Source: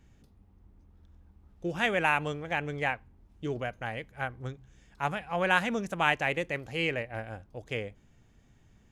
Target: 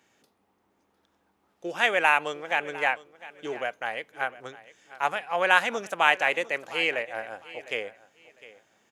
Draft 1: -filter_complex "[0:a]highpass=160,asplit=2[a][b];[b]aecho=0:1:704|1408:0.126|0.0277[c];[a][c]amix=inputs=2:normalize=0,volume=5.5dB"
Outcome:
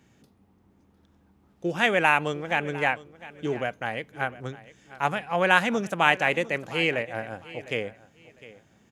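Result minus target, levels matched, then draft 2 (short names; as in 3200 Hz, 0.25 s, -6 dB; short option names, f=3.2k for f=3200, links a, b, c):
125 Hz band +16.0 dB
-filter_complex "[0:a]highpass=490,asplit=2[a][b];[b]aecho=0:1:704|1408:0.126|0.0277[c];[a][c]amix=inputs=2:normalize=0,volume=5.5dB"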